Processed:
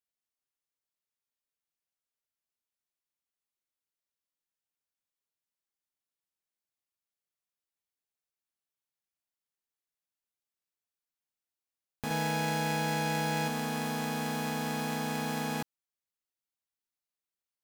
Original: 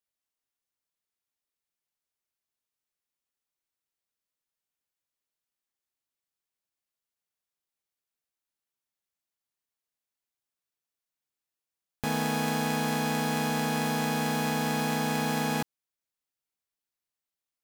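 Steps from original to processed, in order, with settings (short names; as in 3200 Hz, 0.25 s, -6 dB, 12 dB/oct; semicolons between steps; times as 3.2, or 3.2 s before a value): 12.1–13.48 comb 6 ms, depth 77%; gain -5 dB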